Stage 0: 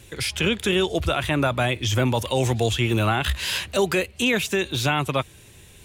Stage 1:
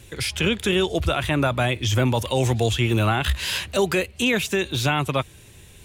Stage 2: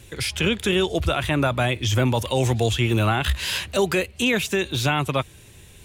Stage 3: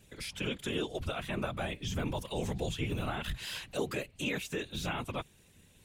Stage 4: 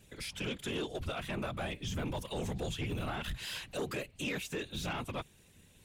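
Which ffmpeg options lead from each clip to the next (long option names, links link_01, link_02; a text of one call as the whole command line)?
ffmpeg -i in.wav -af "lowshelf=frequency=140:gain=3" out.wav
ffmpeg -i in.wav -af anull out.wav
ffmpeg -i in.wav -af "afftfilt=real='hypot(re,im)*cos(2*PI*random(0))':imag='hypot(re,im)*sin(2*PI*random(1))':win_size=512:overlap=0.75,volume=-8dB" out.wav
ffmpeg -i in.wav -af "asoftclip=type=tanh:threshold=-29.5dB" out.wav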